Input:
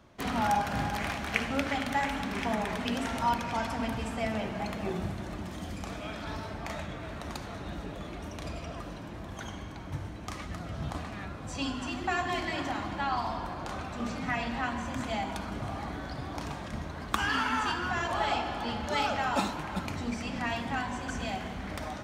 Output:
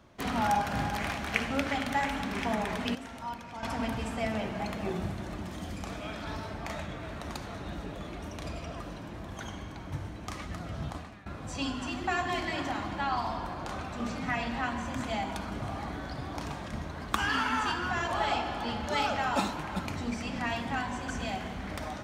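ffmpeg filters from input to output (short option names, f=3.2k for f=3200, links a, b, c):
-filter_complex "[0:a]asplit=4[a][b][c][d];[a]atrim=end=2.952[e];[b]atrim=start=2.948:end=3.632,asetpts=PTS-STARTPTS,volume=-10.5dB[f];[c]atrim=start=3.628:end=11.26,asetpts=PTS-STARTPTS,afade=t=out:st=7.162:d=0.47:silence=0.141254[g];[d]atrim=start=11.26,asetpts=PTS-STARTPTS,afade=t=in:d=0.004:c=hsin:silence=0.141254[h];[e][f]acrossfade=d=0.004:c1=hsin:c2=hsin[i];[g][h]concat=n=2:v=0:a=1[j];[i][j]acrossfade=d=0.004:c1=hsin:c2=hsin"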